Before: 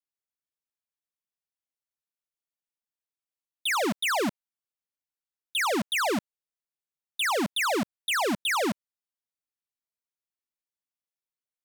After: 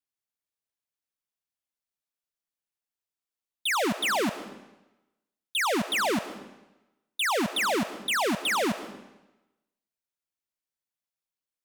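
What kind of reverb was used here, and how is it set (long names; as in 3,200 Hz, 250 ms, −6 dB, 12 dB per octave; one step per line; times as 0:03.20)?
comb and all-pass reverb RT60 1 s, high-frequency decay 0.95×, pre-delay 80 ms, DRR 12 dB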